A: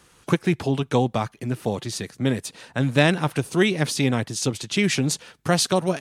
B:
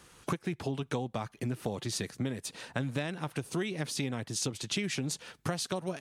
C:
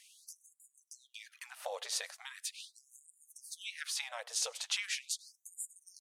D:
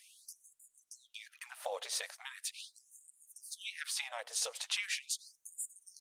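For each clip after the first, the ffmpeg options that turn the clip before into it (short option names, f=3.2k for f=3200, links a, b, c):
-af "acompressor=threshold=-28dB:ratio=12,volume=-1.5dB"
-filter_complex "[0:a]asplit=2[a][b];[b]adelay=99.13,volume=-26dB,highshelf=f=4k:g=-2.23[c];[a][c]amix=inputs=2:normalize=0,afftfilt=real='re*gte(b*sr/1024,430*pow(6900/430,0.5+0.5*sin(2*PI*0.4*pts/sr)))':imag='im*gte(b*sr/1024,430*pow(6900/430,0.5+0.5*sin(2*PI*0.4*pts/sr)))':win_size=1024:overlap=0.75"
-af "volume=1.5dB" -ar 48000 -c:a libopus -b:a 24k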